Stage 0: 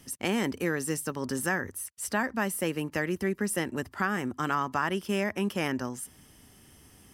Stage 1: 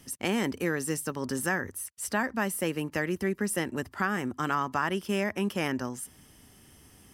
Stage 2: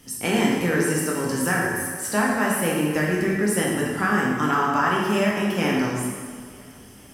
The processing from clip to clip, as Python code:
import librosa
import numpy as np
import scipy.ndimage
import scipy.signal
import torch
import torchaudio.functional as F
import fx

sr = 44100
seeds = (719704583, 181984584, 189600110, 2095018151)

y1 = x
y2 = fx.doubler(y1, sr, ms=24.0, db=-11.5)
y2 = fx.echo_feedback(y2, sr, ms=458, feedback_pct=56, wet_db=-23)
y2 = fx.rev_plate(y2, sr, seeds[0], rt60_s=1.7, hf_ratio=0.8, predelay_ms=0, drr_db=-3.5)
y2 = F.gain(torch.from_numpy(y2), 2.5).numpy()